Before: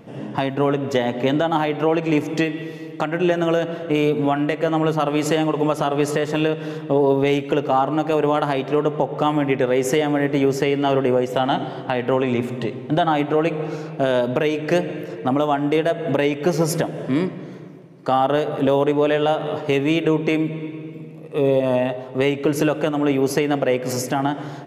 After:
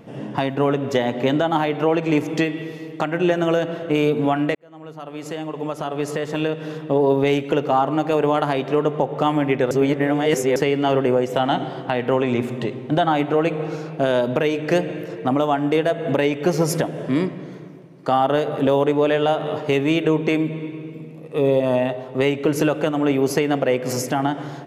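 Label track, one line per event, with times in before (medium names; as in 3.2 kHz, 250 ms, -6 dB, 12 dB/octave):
4.550000	7.140000	fade in
9.710000	10.560000	reverse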